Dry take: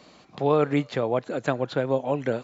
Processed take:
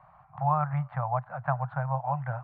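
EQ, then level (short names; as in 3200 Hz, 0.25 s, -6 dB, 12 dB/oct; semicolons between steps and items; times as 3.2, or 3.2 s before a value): elliptic band-stop 140–760 Hz, stop band 50 dB; LPF 1300 Hz 24 dB/oct; +4.0 dB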